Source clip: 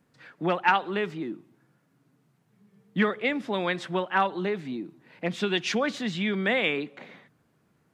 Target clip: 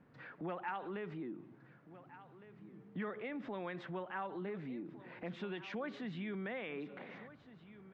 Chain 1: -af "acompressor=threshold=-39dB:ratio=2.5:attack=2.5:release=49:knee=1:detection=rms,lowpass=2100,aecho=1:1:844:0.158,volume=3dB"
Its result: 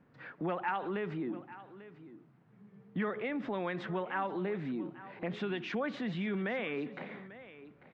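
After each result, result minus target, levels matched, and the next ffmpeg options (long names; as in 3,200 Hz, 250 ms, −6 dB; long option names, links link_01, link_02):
echo 616 ms early; downward compressor: peak gain reduction −7 dB
-af "acompressor=threshold=-39dB:ratio=2.5:attack=2.5:release=49:knee=1:detection=rms,lowpass=2100,aecho=1:1:1460:0.158,volume=3dB"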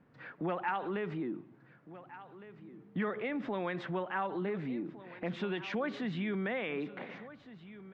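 downward compressor: peak gain reduction −7 dB
-af "acompressor=threshold=-50.5dB:ratio=2.5:attack=2.5:release=49:knee=1:detection=rms,lowpass=2100,aecho=1:1:1460:0.158,volume=3dB"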